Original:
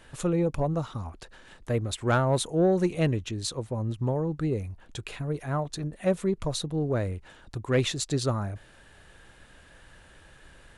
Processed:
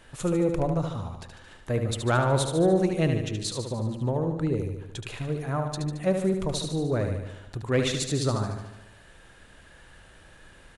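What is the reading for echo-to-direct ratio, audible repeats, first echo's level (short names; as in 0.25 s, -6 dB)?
-4.5 dB, 7, -6.5 dB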